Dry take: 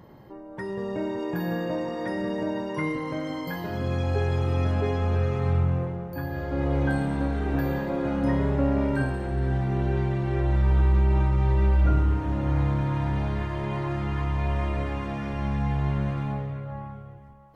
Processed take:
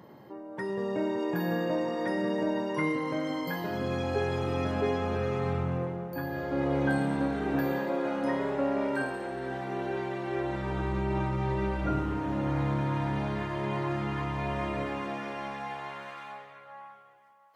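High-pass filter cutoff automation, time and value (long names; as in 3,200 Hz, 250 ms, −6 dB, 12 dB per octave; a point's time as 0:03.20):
0:07.52 170 Hz
0:08.06 360 Hz
0:10.22 360 Hz
0:10.89 160 Hz
0:14.74 160 Hz
0:15.31 380 Hz
0:16.18 1,000 Hz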